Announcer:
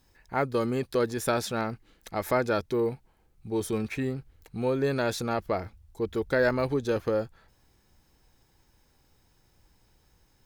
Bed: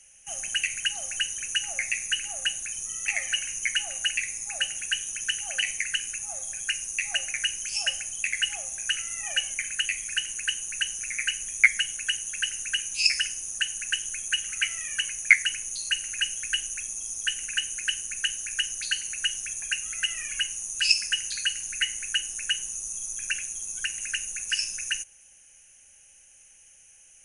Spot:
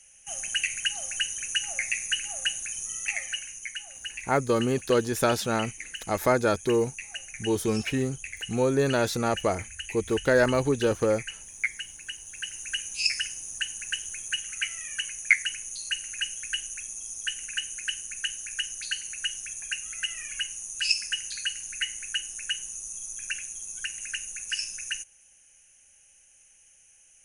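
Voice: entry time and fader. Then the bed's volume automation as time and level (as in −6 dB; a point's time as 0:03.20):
3.95 s, +3.0 dB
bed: 0:02.96 −0.5 dB
0:03.74 −10.5 dB
0:12.18 −10.5 dB
0:12.72 −3.5 dB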